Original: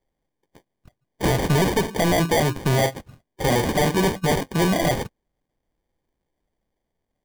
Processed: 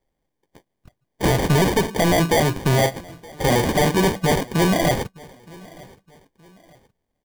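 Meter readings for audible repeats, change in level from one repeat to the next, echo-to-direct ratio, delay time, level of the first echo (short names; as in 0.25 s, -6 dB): 2, -9.0 dB, -23.0 dB, 0.92 s, -23.5 dB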